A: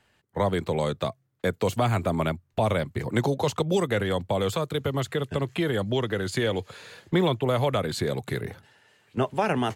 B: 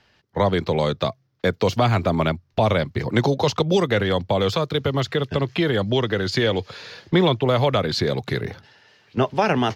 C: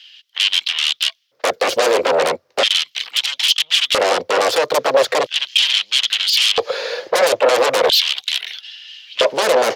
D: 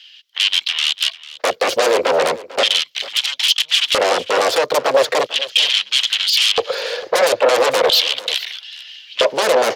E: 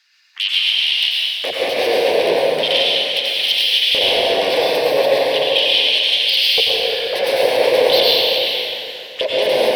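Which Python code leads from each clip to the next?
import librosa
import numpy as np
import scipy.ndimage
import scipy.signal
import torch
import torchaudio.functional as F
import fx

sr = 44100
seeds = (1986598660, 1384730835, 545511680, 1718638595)

y1 = fx.high_shelf_res(x, sr, hz=6700.0, db=-8.5, q=3.0)
y1 = y1 * librosa.db_to_amplitude(5.0)
y2 = fx.fold_sine(y1, sr, drive_db=17, ceiling_db=-6.0)
y2 = fx.filter_lfo_highpass(y2, sr, shape='square', hz=0.38, low_hz=520.0, high_hz=3100.0, q=5.6)
y2 = y2 * librosa.db_to_amplitude(-9.5)
y3 = y2 + 10.0 ** (-18.0 / 20.0) * np.pad(y2, (int(447 * sr / 1000.0), 0))[:len(y2)]
y4 = fx.env_phaser(y3, sr, low_hz=510.0, high_hz=1300.0, full_db=-18.0)
y4 = fx.rev_plate(y4, sr, seeds[0], rt60_s=2.8, hf_ratio=0.75, predelay_ms=80, drr_db=-6.0)
y4 = y4 * librosa.db_to_amplitude(-3.5)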